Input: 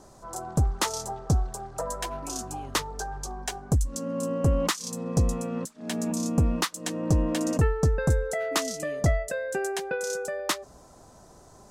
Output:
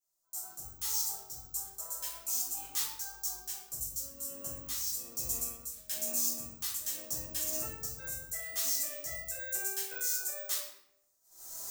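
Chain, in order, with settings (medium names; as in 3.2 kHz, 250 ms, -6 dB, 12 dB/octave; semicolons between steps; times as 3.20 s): recorder AGC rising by 16 dB/s; pre-emphasis filter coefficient 0.97; gate -47 dBFS, range -29 dB; treble shelf 4.2 kHz +6 dB; peak limiter -20 dBFS, peak gain reduction 11.5 dB; random-step tremolo; simulated room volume 200 m³, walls mixed, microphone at 3.8 m; careless resampling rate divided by 2×, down filtered, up zero stuff; trim -9 dB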